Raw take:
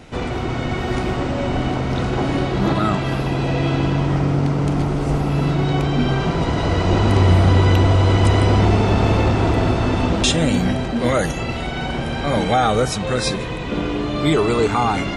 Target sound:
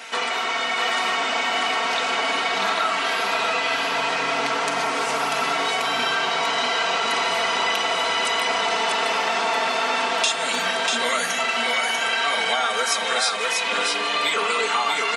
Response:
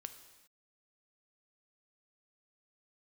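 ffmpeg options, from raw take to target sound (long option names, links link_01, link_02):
-filter_complex "[0:a]highpass=1100,aecho=1:1:4.4:0.81,acompressor=threshold=-31dB:ratio=6,aecho=1:1:642:0.668,asplit=2[link_01][link_02];[1:a]atrim=start_sample=2205[link_03];[link_02][link_03]afir=irnorm=-1:irlink=0,volume=-1dB[link_04];[link_01][link_04]amix=inputs=2:normalize=0,volume=6.5dB"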